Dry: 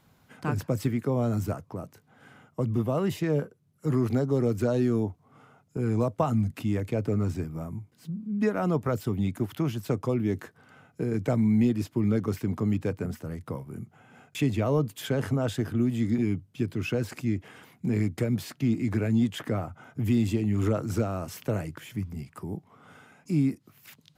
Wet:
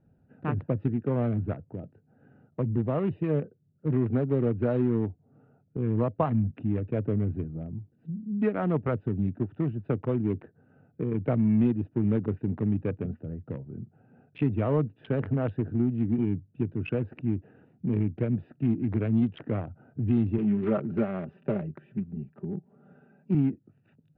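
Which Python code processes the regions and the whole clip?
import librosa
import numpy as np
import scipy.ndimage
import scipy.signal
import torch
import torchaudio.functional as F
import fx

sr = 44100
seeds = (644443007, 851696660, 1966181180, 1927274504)

y = fx.chain(x, sr, fx.highpass(hz=91.0, slope=12),
    fx.comb(ms=5.1, depth=0.76), at=(20.38, 23.35))
y = fx.wiener(y, sr, points=41)
y = scipy.signal.sosfilt(scipy.signal.cheby2(4, 50, 7200.0, 'lowpass', fs=sr, output='sos'), y)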